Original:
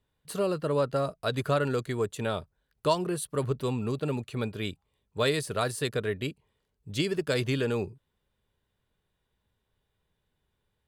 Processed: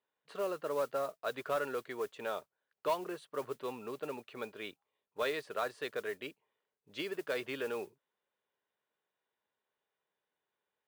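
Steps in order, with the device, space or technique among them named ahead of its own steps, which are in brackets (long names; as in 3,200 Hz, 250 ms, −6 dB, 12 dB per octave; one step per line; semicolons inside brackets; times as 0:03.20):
carbon microphone (band-pass filter 470–2,700 Hz; soft clipping −18.5 dBFS, distortion −21 dB; noise that follows the level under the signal 21 dB)
level −4 dB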